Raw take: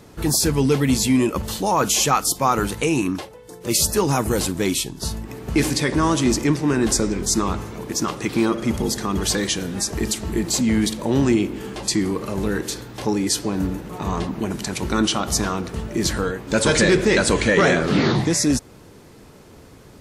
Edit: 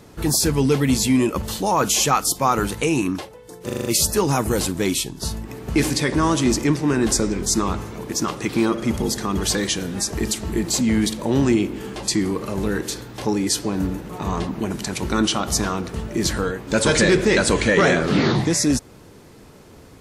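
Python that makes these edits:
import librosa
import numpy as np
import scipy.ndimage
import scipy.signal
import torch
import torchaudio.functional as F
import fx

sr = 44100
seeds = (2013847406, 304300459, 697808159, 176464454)

y = fx.edit(x, sr, fx.stutter(start_s=3.65, slice_s=0.04, count=6), tone=tone)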